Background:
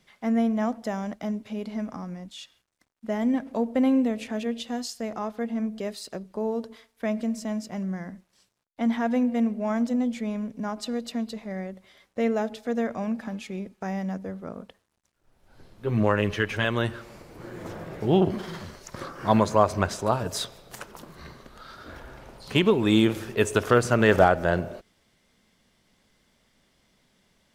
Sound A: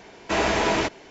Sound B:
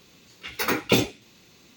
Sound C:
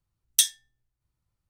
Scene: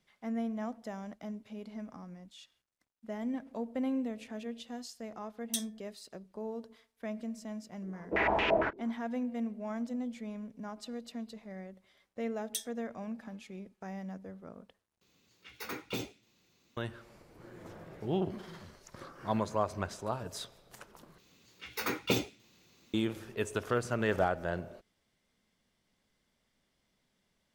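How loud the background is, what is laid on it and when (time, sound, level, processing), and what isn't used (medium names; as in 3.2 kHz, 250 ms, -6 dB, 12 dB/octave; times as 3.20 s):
background -11.5 dB
5.15 s: add C -15 dB
7.82 s: add A -10.5 dB + step-sequenced low-pass 8.8 Hz 360–2700 Hz
12.16 s: add C -17.5 dB
15.01 s: replace with B -15.5 dB + saturation -11 dBFS
21.18 s: replace with B -9.5 dB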